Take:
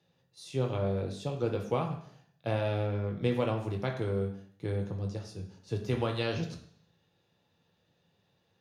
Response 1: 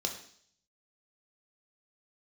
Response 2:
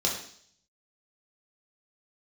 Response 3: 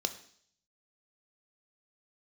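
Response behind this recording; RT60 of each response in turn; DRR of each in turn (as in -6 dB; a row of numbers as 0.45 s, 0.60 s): 1; 0.60 s, 0.60 s, 0.60 s; 2.0 dB, -3.0 dB, 8.0 dB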